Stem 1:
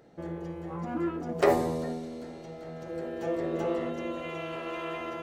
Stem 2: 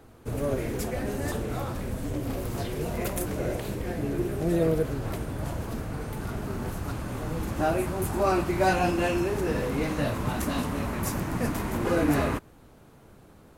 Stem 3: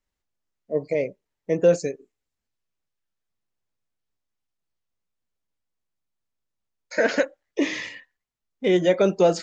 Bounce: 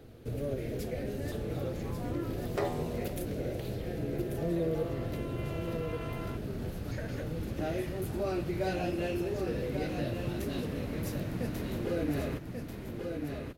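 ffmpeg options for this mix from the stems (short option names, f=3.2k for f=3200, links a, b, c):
-filter_complex "[0:a]adelay=1150,volume=-1dB[a];[1:a]equalizer=f=125:t=o:w=1:g=4,equalizer=f=500:t=o:w=1:g=5,equalizer=f=1k:t=o:w=1:g=-11,equalizer=f=4k:t=o:w=1:g=4,equalizer=f=8k:t=o:w=1:g=-7,volume=-1dB,asplit=2[b][c];[c]volume=-7.5dB[d];[2:a]acompressor=threshold=-26dB:ratio=6,volume=-8.5dB[e];[d]aecho=0:1:1139:1[f];[a][b][e][f]amix=inputs=4:normalize=0,acompressor=threshold=-44dB:ratio=1.5"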